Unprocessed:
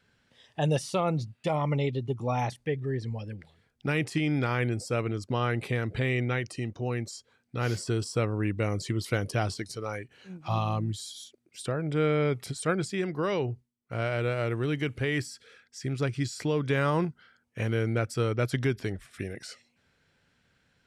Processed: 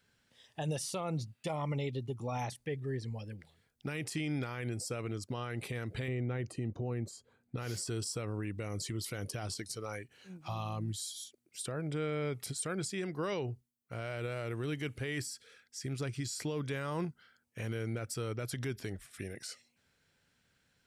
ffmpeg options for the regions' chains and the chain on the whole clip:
-filter_complex "[0:a]asettb=1/sr,asplit=3[a][b][c];[a]atrim=end=6.084[d];[b]atrim=start=6.08:end=7.57,asetpts=PTS-STARTPTS,afade=t=in:d=0.004:c=qsin,afade=t=out:st=1.486:d=0.004:c=qsin,tiltshelf=f=1.5k:g=8,bandreject=f=5.5k:w=7.4[e];[c]atrim=start=7.566[f];[d][e]acrossfade=d=0.004:c1=hsin:c2=qsin[g];[g][f]acrossfade=d=0.004:c1=qsin:c2=hsin,highshelf=f=6.3k:g=12,alimiter=limit=-21.5dB:level=0:latency=1:release=56,volume=-6dB"

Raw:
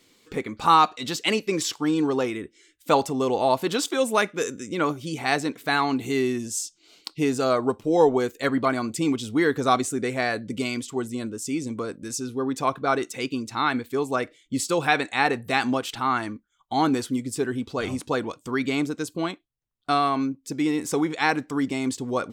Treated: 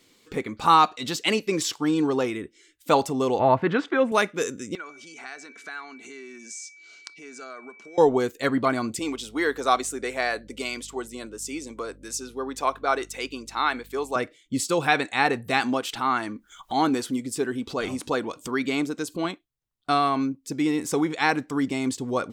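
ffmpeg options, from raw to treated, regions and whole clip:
-filter_complex "[0:a]asettb=1/sr,asplit=3[a][b][c];[a]atrim=end=3.394[d];[b]atrim=start=3.39:end=4.12,asetpts=PTS-STARTPTS,afade=t=in:d=0.004:c=qsin,afade=t=out:st=0.726:d=0.004:c=qsin,lowpass=f=1.8k:t=q:w=2.2,equalizer=f=100:w=0.84:g=10.5[e];[c]atrim=start=4.116[f];[d][e]acrossfade=d=0.004:c1=hsin:c2=qsin[g];[g][f]acrossfade=d=0.004:c1=qsin:c2=hsin,asettb=1/sr,asplit=3[h][i][j];[h]atrim=end=4.754[k];[i]atrim=start=4.75:end=7.98,asetpts=PTS-STARTPTS,afade=t=in:d=0.004:c=qsin,afade=t=out:st=3.226:d=0.004:c=qsin,acompressor=threshold=-36dB:ratio=6:attack=3.2:release=140:knee=1:detection=peak,aeval=exprs='val(0)+0.00398*sin(2*PI*2300*n/s)':c=same,highpass=f=270:w=0.5412,highpass=f=270:w=1.3066,equalizer=f=310:t=q:w=4:g=-8,equalizer=f=520:t=q:w=4:g=-8,equalizer=f=870:t=q:w=4:g=-5,equalizer=f=1.5k:t=q:w=4:g=9,equalizer=f=3.4k:t=q:w=4:g=-5,equalizer=f=6.3k:t=q:w=4:g=5,lowpass=f=8.4k:w=0.5412,lowpass=f=8.4k:w=1.3066[l];[j]atrim=start=7.976[m];[k][l]acrossfade=d=0.004:c1=hsin:c2=qsin[n];[n][m]acrossfade=d=0.004:c1=qsin:c2=hsin,asettb=1/sr,asplit=3[o][p][q];[o]atrim=end=8.994[r];[p]atrim=start=8.99:end=14.16,asetpts=PTS-STARTPTS,afade=t=in:d=0.004:c=qsin,afade=t=out:st=5.166:d=0.004:c=qsin,highpass=420,aeval=exprs='val(0)+0.00282*(sin(2*PI*50*n/s)+sin(2*PI*2*50*n/s)/2+sin(2*PI*3*50*n/s)/3+sin(2*PI*4*50*n/s)/4+sin(2*PI*5*50*n/s)/5)':c=same[s];[q]atrim=start=14.156[t];[r][s]acrossfade=d=0.004:c1=hsin:c2=qsin[u];[u][t]acrossfade=d=0.004:c1=qsin:c2=hsin,asettb=1/sr,asplit=3[v][w][x];[v]atrim=end=15.604[y];[w]atrim=start=15.6:end=19.25,asetpts=PTS-STARTPTS,afade=t=in:d=0.004:c=qsin,afade=t=out:st=3.646:d=0.004:c=qsin,acompressor=mode=upward:threshold=-27dB:ratio=2.5:attack=3.2:release=140:knee=2.83:detection=peak,equalizer=f=110:w=1.2:g=-7[z];[x]atrim=start=19.246[aa];[y][z]acrossfade=d=0.004:c1=hsin:c2=qsin[ab];[ab][aa]acrossfade=d=0.004:c1=qsin:c2=hsin"

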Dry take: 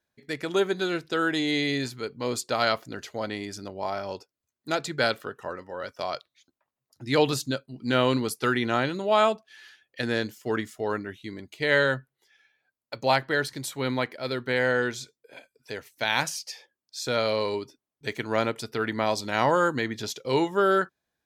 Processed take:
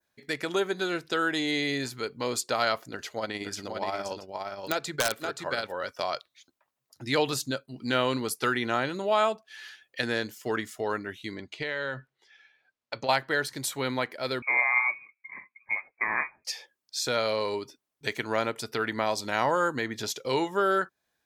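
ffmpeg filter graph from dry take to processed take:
-filter_complex "[0:a]asettb=1/sr,asplit=3[a][b][c];[a]atrim=end=2.894[d];[b]atrim=start=2.89:end=5.72,asetpts=PTS-STARTPTS,afade=t=in:d=0.004:c=qsin,afade=t=out:st=2.826:d=0.004:c=qsin,tremolo=f=17:d=0.45,aecho=1:1:525:0.501,atrim=end_sample=124803,aeval=exprs='(mod(5.96*val(0)+1,2)-1)/5.96':c=same[e];[c]atrim=start=5.716[f];[d][e]acrossfade=d=0.004:c1=hsin:c2=qsin[g];[g][f]acrossfade=d=0.004:c1=qsin:c2=hsin,asettb=1/sr,asplit=3[h][i][j];[h]atrim=end=11.354[k];[i]atrim=start=11.35:end=13.09,asetpts=PTS-STARTPTS,afade=t=in:d=0.004:c=qsin,afade=t=out:st=1.736:d=0.004:c=qsin,lowpass=5.1k,acompressor=threshold=-29dB:ratio=10:attack=3.2:release=140:knee=1:detection=peak[l];[j]atrim=start=13.086[m];[k][l]acrossfade=d=0.004:c1=hsin:c2=qsin[n];[n][m]acrossfade=d=0.004:c1=qsin:c2=hsin,asettb=1/sr,asplit=3[o][p][q];[o]atrim=end=14.424[r];[p]atrim=start=14.42:end=16.45,asetpts=PTS-STARTPTS,afade=t=in:d=0.004:c=qsin,afade=t=out:st=2.026:d=0.004:c=qsin,equalizer=f=350:t=o:w=1.3:g=11,flanger=delay=5.3:depth=3.7:regen=55:speed=1.9:shape=sinusoidal,lowpass=f=2.2k:t=q:w=0.5098,lowpass=f=2.2k:t=q:w=0.6013,lowpass=f=2.2k:t=q:w=0.9,lowpass=f=2.2k:t=q:w=2.563,afreqshift=-2600[s];[q]atrim=start=16.446[t];[r][s]acrossfade=d=0.004:c1=hsin:c2=qsin[u];[u][t]acrossfade=d=0.004:c1=qsin:c2=hsin,adynamicequalizer=threshold=0.00891:dfrequency=3400:dqfactor=0.77:tfrequency=3400:tqfactor=0.77:attack=5:release=100:ratio=0.375:range=2.5:mode=cutabove:tftype=bell,acompressor=threshold=-35dB:ratio=1.5,lowshelf=f=440:g=-7,volume=5.5dB"

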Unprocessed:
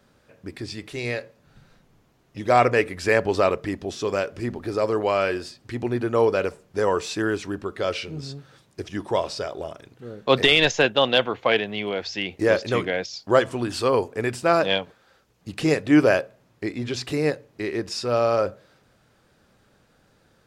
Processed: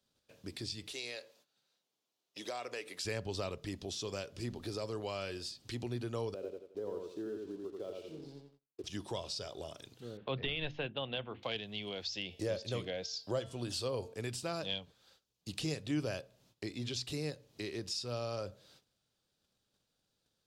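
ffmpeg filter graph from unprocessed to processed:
-filter_complex "[0:a]asettb=1/sr,asplit=3[a][b][c];[a]atrim=end=0.924[d];[b]atrim=start=0.92:end=3.05,asetpts=PTS-STARTPTS,afade=t=in:d=0.004:c=qsin,afade=t=out:st=2.126:d=0.004:c=qsin,highpass=390,acompressor=threshold=-26dB:ratio=2:attack=3.2:release=140:knee=1:detection=peak[e];[c]atrim=start=3.046[f];[d][e]acrossfade=d=0.004:c1=hsin:c2=qsin[g];[g][f]acrossfade=d=0.004:c1=qsin:c2=hsin,asettb=1/sr,asplit=3[h][i][j];[h]atrim=end=6.344[k];[i]atrim=start=6.34:end=8.84,asetpts=PTS-STARTPTS,afade=t=in:d=0.004:c=qsin,afade=t=out:st=2.496:d=0.004:c=qsin,bandpass=f=380:t=q:w=1.7,aeval=exprs='sgn(val(0))*max(abs(val(0))-0.00168,0)':c=same,aecho=1:1:87|174|261|348:0.631|0.177|0.0495|0.0139,atrim=end_sample=110250[l];[j]atrim=start=8.836[m];[k][l]acrossfade=d=0.004:c1=hsin:c2=qsin[n];[n][m]acrossfade=d=0.004:c1=qsin:c2=hsin,asettb=1/sr,asplit=3[o][p][q];[o]atrim=end=10.174[r];[p]atrim=start=10.17:end=11.43,asetpts=PTS-STARTPTS,afade=t=in:d=0.004:c=qsin,afade=t=out:st=1.256:d=0.004:c=qsin,lowpass=f=2.7k:w=0.5412,lowpass=f=2.7k:w=1.3066,bandreject=f=50:t=h:w=6,bandreject=f=100:t=h:w=6,bandreject=f=150:t=h:w=6,bandreject=f=200:t=h:w=6,bandreject=f=250:t=h:w=6,bandreject=f=300:t=h:w=6,bandreject=f=350:t=h:w=6[s];[q]atrim=start=11.426[t];[r][s]acrossfade=d=0.004:c1=hsin:c2=qsin[u];[u][t]acrossfade=d=0.004:c1=qsin:c2=hsin,asettb=1/sr,asplit=3[v][w][x];[v]atrim=end=12.104[y];[w]atrim=start=12.1:end=14.14,asetpts=PTS-STARTPTS,afade=t=in:d=0.004:c=qsin,afade=t=out:st=2.036:d=0.004:c=qsin,equalizer=f=560:t=o:w=0.62:g=7.5,bandreject=f=225.2:t=h:w=4,bandreject=f=450.4:t=h:w=4,bandreject=f=675.6:t=h:w=4,bandreject=f=900.8:t=h:w=4,bandreject=f=1.126k:t=h:w=4,bandreject=f=1.3512k:t=h:w=4,bandreject=f=1.5764k:t=h:w=4,bandreject=f=1.8016k:t=h:w=4,bandreject=f=2.0268k:t=h:w=4,bandreject=f=2.252k:t=h:w=4,bandreject=f=2.4772k:t=h:w=4,bandreject=f=2.7024k:t=h:w=4,bandreject=f=2.9276k:t=h:w=4,bandreject=f=3.1528k:t=h:w=4,bandreject=f=3.378k:t=h:w=4,bandreject=f=3.6032k:t=h:w=4,bandreject=f=3.8284k:t=h:w=4,bandreject=f=4.0536k:t=h:w=4,bandreject=f=4.2788k:t=h:w=4,bandreject=f=4.504k:t=h:w=4,bandreject=f=4.7292k:t=h:w=4,bandreject=f=4.9544k:t=h:w=4,bandreject=f=5.1796k:t=h:w=4,bandreject=f=5.4048k:t=h:w=4,bandreject=f=5.63k:t=h:w=4[z];[x]atrim=start=14.136[aa];[y][z]acrossfade=d=0.004:c1=hsin:c2=qsin[ab];[ab][aa]acrossfade=d=0.004:c1=qsin:c2=hsin,agate=range=-16dB:threshold=-57dB:ratio=16:detection=peak,highshelf=f=2.6k:t=q:w=1.5:g=9.5,acrossover=split=160[ac][ad];[ad]acompressor=threshold=-34dB:ratio=2.5[ae];[ac][ae]amix=inputs=2:normalize=0,volume=-8dB"

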